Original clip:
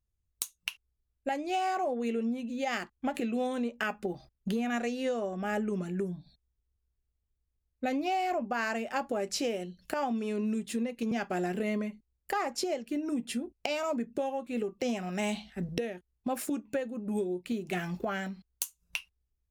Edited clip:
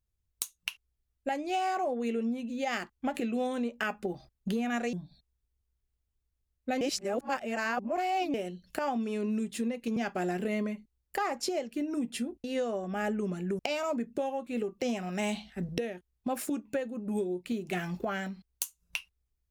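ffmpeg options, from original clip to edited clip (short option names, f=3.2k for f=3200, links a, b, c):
-filter_complex "[0:a]asplit=6[a][b][c][d][e][f];[a]atrim=end=4.932[g];[b]atrim=start=6.078:end=7.962[h];[c]atrim=start=7.958:end=9.492,asetpts=PTS-STARTPTS,areverse[i];[d]atrim=start=9.488:end=13.592[j];[e]atrim=start=4.928:end=6.082[k];[f]atrim=start=13.588[l];[g][h]acrossfade=d=0.004:c1=hsin:c2=hsin[m];[m][i]acrossfade=d=0.004:c1=hsin:c2=hsin[n];[n][j]acrossfade=d=0.004:c1=hsin:c2=hsin[o];[o][k]acrossfade=d=0.004:c1=hsin:c2=hsin[p];[p][l]acrossfade=d=0.004:c1=hsin:c2=hsin"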